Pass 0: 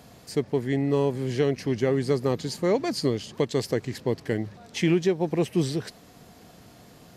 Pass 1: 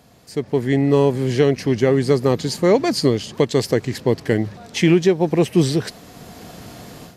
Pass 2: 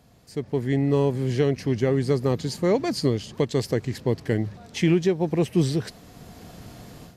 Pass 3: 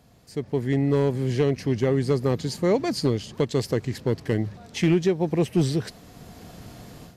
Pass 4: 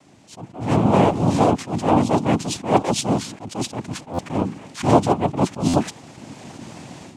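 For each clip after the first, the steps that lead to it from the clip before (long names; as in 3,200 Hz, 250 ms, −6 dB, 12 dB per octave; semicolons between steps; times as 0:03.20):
automatic gain control gain up to 15 dB; level −2 dB
low-shelf EQ 130 Hz +9 dB; level −7.5 dB
hard clipping −13 dBFS, distortion −24 dB
cochlear-implant simulation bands 4; buffer that repeats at 0:04.13/0:05.68, samples 512, times 4; level that may rise only so fast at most 170 dB per second; level +6.5 dB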